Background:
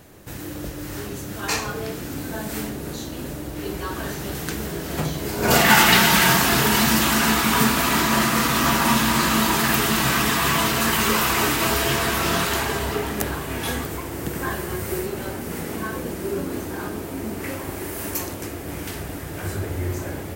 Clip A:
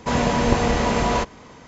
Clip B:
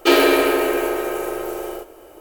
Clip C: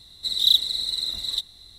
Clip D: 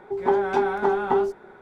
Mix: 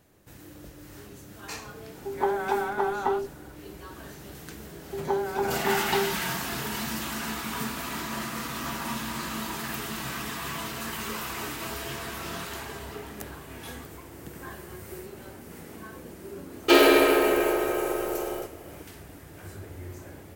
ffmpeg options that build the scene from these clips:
-filter_complex "[4:a]asplit=2[a][b];[0:a]volume=-14dB[c];[a]equalizer=f=180:w=0.49:g=-8.5,atrim=end=1.61,asetpts=PTS-STARTPTS,volume=-1.5dB,afade=t=in:d=0.004:c=hsin,afade=t=out:st=1.606:d=0.004:c=hsin,adelay=1950[d];[b]atrim=end=1.61,asetpts=PTS-STARTPTS,volume=-6.5dB,afade=t=in:d=0.004:c=hsin,afade=t=out:st=1.606:d=0.004:c=hsin,adelay=4820[e];[2:a]atrim=end=2.2,asetpts=PTS-STARTPTS,volume=-3dB,afade=t=in:d=0.004:c=hsin,afade=t=out:st=2.196:d=0.004:c=hsin,adelay=16630[f];[c][d][e][f]amix=inputs=4:normalize=0"

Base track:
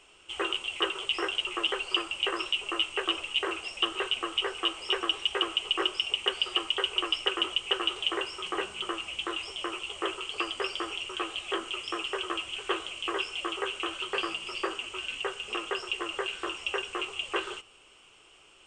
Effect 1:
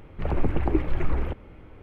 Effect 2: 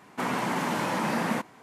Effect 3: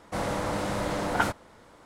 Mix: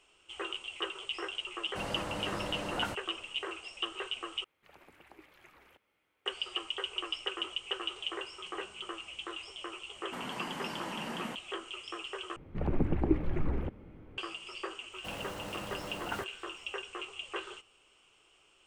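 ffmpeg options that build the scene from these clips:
-filter_complex "[3:a]asplit=2[a][b];[1:a]asplit=2[c][d];[0:a]volume=-8dB[e];[a]alimiter=limit=-12.5dB:level=0:latency=1:release=178[f];[c]aderivative[g];[d]equalizer=f=210:t=o:w=2.2:g=8[h];[b]acrusher=bits=7:dc=4:mix=0:aa=0.000001[i];[e]asplit=3[j][k][l];[j]atrim=end=4.444[m];[g]atrim=end=1.82,asetpts=PTS-STARTPTS,volume=-6.5dB[n];[k]atrim=start=6.256:end=12.364[o];[h]atrim=end=1.82,asetpts=PTS-STARTPTS,volume=-9dB[p];[l]atrim=start=14.176[q];[f]atrim=end=1.85,asetpts=PTS-STARTPTS,volume=-8.5dB,afade=t=in:d=0.004:c=hsin,afade=t=out:st=1.846:d=0.004:c=hsin,adelay=1630[r];[2:a]atrim=end=1.62,asetpts=PTS-STARTPTS,volume=-12.5dB,afade=t=in:d=0.004:c=hsin,afade=t=out:st=1.616:d=0.004:c=hsin,adelay=438354S[s];[i]atrim=end=1.85,asetpts=PTS-STARTPTS,volume=-13dB,afade=t=in:d=0.004:c=hsin,afade=t=out:st=1.846:d=0.004:c=hsin,adelay=657972S[t];[m][n]acrossfade=d=0.004:c1=hsin:c2=hsin[u];[u][o]acrossfade=d=0.004:c1=hsin:c2=hsin[v];[v][p]acrossfade=d=0.004:c1=hsin:c2=hsin[w];[w][q]acrossfade=d=0.004:c1=hsin:c2=hsin[x];[x][r][s][t]amix=inputs=4:normalize=0"

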